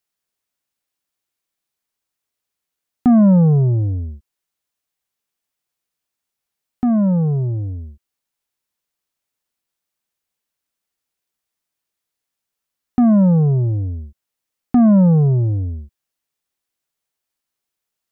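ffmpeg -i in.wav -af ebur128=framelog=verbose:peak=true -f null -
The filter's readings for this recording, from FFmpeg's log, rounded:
Integrated loudness:
  I:         -15.4 LUFS
  Threshold: -26.5 LUFS
Loudness range:
  LRA:         9.8 LU
  Threshold: -39.9 LUFS
  LRA low:   -26.1 LUFS
  LRA high:  -16.2 LUFS
True peak:
  Peak:       -8.3 dBFS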